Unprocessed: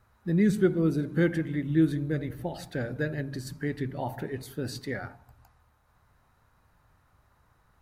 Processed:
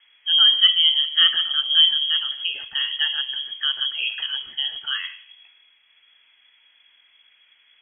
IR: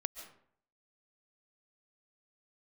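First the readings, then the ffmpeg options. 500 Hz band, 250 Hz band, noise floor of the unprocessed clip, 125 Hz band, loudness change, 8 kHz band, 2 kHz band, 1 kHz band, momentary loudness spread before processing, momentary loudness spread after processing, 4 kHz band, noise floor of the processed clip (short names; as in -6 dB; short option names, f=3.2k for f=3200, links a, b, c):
under -25 dB, under -35 dB, -66 dBFS, under -35 dB, +11.0 dB, under -30 dB, +8.5 dB, +2.0 dB, 12 LU, 12 LU, +34.5 dB, -60 dBFS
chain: -filter_complex "[0:a]bandreject=f=45.14:t=h:w=4,bandreject=f=90.28:t=h:w=4,bandreject=f=135.42:t=h:w=4,bandreject=f=180.56:t=h:w=4,bandreject=f=225.7:t=h:w=4,bandreject=f=270.84:t=h:w=4,bandreject=f=315.98:t=h:w=4,bandreject=f=361.12:t=h:w=4,bandreject=f=406.26:t=h:w=4,bandreject=f=451.4:t=h:w=4,bandreject=f=496.54:t=h:w=4,bandreject=f=541.68:t=h:w=4,bandreject=f=586.82:t=h:w=4,bandreject=f=631.96:t=h:w=4,bandreject=f=677.1:t=h:w=4,bandreject=f=722.24:t=h:w=4,bandreject=f=767.38:t=h:w=4,bandreject=f=812.52:t=h:w=4,bandreject=f=857.66:t=h:w=4,bandreject=f=902.8:t=h:w=4,bandreject=f=947.94:t=h:w=4,bandreject=f=993.08:t=h:w=4,bandreject=f=1.03822k:t=h:w=4,bandreject=f=1.08336k:t=h:w=4,bandreject=f=1.1285k:t=h:w=4,bandreject=f=1.17364k:t=h:w=4,bandreject=f=1.21878k:t=h:w=4,bandreject=f=1.26392k:t=h:w=4,bandreject=f=1.30906k:t=h:w=4,bandreject=f=1.3542k:t=h:w=4,bandreject=f=1.39934k:t=h:w=4,bandreject=f=1.44448k:t=h:w=4,bandreject=f=1.48962k:t=h:w=4,asplit=2[a][b];[1:a]atrim=start_sample=2205,asetrate=52920,aresample=44100[c];[b][c]afir=irnorm=-1:irlink=0,volume=-8.5dB[d];[a][d]amix=inputs=2:normalize=0,lowpass=f=2.9k:t=q:w=0.5098,lowpass=f=2.9k:t=q:w=0.6013,lowpass=f=2.9k:t=q:w=0.9,lowpass=f=2.9k:t=q:w=2.563,afreqshift=-3400,volume=5.5dB"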